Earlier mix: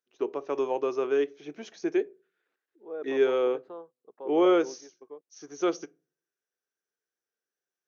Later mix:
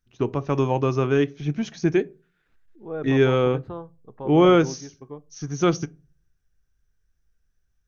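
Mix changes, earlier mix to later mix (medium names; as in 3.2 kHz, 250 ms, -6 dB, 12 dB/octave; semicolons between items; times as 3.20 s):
second voice: send on; master: remove ladder high-pass 330 Hz, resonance 40%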